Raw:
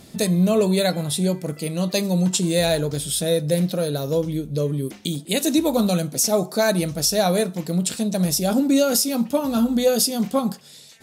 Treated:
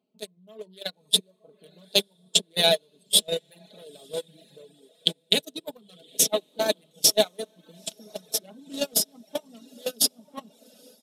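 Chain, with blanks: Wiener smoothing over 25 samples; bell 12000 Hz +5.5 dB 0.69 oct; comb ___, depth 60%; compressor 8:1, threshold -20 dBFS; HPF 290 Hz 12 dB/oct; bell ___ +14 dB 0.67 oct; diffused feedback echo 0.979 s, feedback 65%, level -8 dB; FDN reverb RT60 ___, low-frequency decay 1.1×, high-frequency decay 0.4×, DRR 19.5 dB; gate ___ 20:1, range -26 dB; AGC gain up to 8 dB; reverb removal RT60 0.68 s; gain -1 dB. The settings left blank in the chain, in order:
4.7 ms, 3300 Hz, 0.77 s, -20 dBFS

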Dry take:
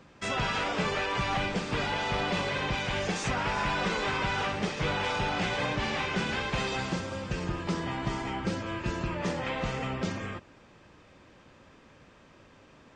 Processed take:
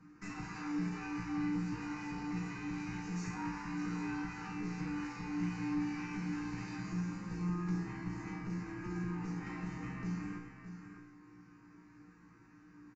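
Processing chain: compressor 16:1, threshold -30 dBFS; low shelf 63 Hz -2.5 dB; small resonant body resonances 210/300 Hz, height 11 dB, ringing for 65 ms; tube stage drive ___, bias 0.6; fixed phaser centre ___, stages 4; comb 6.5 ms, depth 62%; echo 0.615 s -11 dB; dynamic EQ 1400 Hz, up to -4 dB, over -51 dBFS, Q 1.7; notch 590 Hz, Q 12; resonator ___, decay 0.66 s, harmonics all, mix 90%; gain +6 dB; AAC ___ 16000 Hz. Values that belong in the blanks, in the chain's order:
30 dB, 1400 Hz, 59 Hz, 64 kbps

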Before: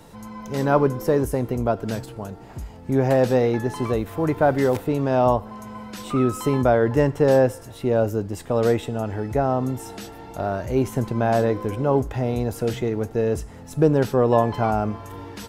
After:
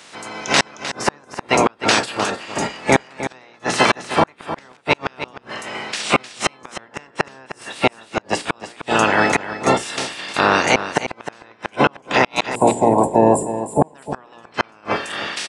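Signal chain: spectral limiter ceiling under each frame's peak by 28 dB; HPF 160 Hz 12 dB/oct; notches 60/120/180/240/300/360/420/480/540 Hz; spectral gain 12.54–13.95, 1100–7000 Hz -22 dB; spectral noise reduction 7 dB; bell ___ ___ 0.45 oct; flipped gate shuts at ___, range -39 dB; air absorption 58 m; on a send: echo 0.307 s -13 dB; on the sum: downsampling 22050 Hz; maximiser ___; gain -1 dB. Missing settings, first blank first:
2500 Hz, +2 dB, -11 dBFS, +14.5 dB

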